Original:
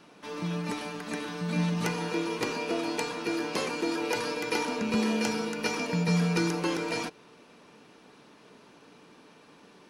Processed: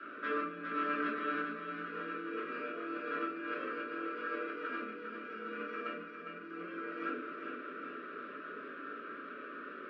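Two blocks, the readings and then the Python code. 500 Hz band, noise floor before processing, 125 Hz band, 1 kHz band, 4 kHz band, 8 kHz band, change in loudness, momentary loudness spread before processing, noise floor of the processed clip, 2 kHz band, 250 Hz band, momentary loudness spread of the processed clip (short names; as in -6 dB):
-9.0 dB, -56 dBFS, -27.5 dB, -3.5 dB, -18.0 dB, under -40 dB, -10.0 dB, 8 LU, -47 dBFS, -4.0 dB, -12.0 dB, 9 LU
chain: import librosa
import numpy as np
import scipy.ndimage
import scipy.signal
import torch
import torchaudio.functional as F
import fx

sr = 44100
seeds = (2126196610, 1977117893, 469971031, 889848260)

y = scipy.signal.sosfilt(scipy.signal.cheby1(2, 1.0, [490.0, 1400.0], 'bandstop', fs=sr, output='sos'), x)
y = fx.peak_eq(y, sr, hz=1400.0, db=6.0, octaves=0.52)
y = fx.hum_notches(y, sr, base_hz=50, count=9)
y = fx.over_compress(y, sr, threshold_db=-41.0, ratio=-1.0)
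y = fx.add_hum(y, sr, base_hz=60, snr_db=16)
y = fx.cabinet(y, sr, low_hz=310.0, low_slope=24, high_hz=2200.0, hz=(330.0, 490.0, 730.0, 1300.0, 2000.0), db=(-5, -7, 4, 5, -7))
y = fx.echo_feedback(y, sr, ms=405, feedback_pct=57, wet_db=-7.0)
y = fx.room_shoebox(y, sr, seeds[0], volume_m3=380.0, walls='furnished', distance_m=2.8)
y = F.gain(torch.from_numpy(y), -1.5).numpy()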